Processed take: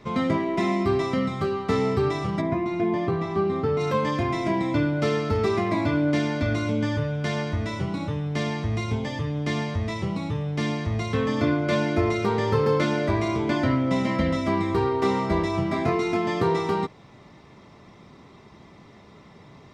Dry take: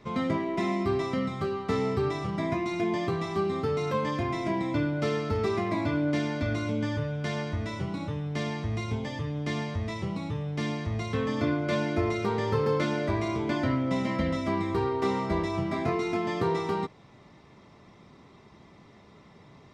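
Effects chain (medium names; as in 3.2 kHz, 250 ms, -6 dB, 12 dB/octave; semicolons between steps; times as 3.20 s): 2.40–3.79 s: low-pass 1.1 kHz -> 2 kHz 6 dB/octave; trim +4.5 dB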